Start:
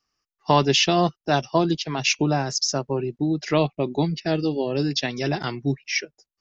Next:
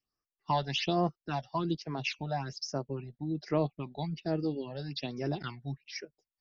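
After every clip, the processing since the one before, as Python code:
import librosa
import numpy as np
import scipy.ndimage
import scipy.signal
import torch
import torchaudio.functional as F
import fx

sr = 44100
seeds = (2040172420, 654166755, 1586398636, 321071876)

y = scipy.signal.sosfilt(scipy.signal.butter(4, 4800.0, 'lowpass', fs=sr, output='sos'), x)
y = fx.phaser_stages(y, sr, stages=8, low_hz=320.0, high_hz=3600.0, hz=1.2, feedback_pct=25)
y = y * 10.0 ** (-9.0 / 20.0)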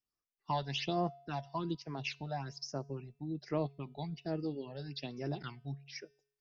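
y = fx.comb_fb(x, sr, f0_hz=140.0, decay_s=0.65, harmonics='odd', damping=0.0, mix_pct=40)
y = y * 10.0 ** (-1.0 / 20.0)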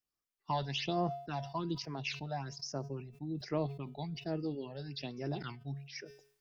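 y = fx.sustainer(x, sr, db_per_s=100.0)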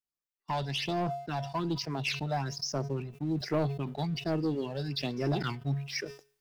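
y = fx.leveller(x, sr, passes=2)
y = fx.rider(y, sr, range_db=4, speed_s=2.0)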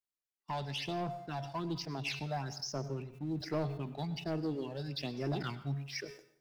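y = fx.rev_plate(x, sr, seeds[0], rt60_s=0.63, hf_ratio=0.8, predelay_ms=85, drr_db=14.5)
y = y * 10.0 ** (-5.5 / 20.0)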